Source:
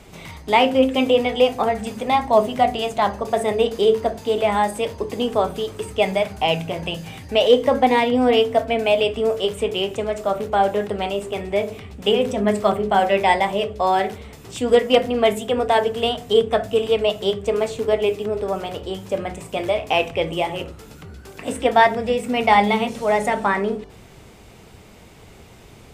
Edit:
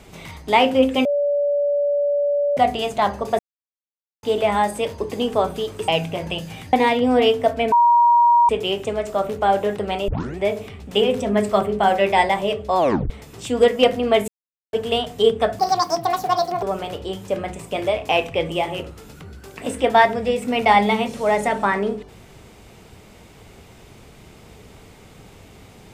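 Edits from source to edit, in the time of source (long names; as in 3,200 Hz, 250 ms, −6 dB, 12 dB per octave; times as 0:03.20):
0:01.05–0:02.57: beep over 576 Hz −16.5 dBFS
0:03.39–0:04.23: silence
0:05.88–0:06.44: remove
0:07.29–0:07.84: remove
0:08.83–0:09.60: beep over 950 Hz −10.5 dBFS
0:11.19: tape start 0.29 s
0:13.89: tape stop 0.32 s
0:15.39–0:15.84: silence
0:16.70–0:18.44: play speed 168%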